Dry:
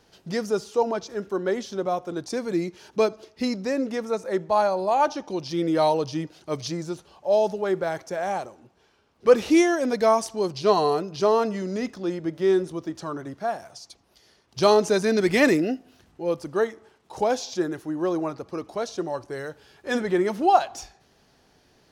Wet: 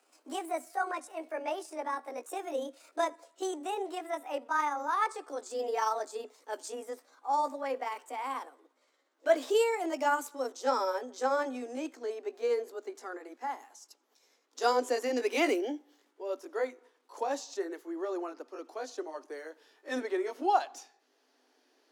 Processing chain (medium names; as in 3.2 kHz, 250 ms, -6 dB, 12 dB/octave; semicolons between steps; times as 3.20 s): pitch bend over the whole clip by +8.5 st ending unshifted; Chebyshev high-pass 250 Hz, order 8; trim -7.5 dB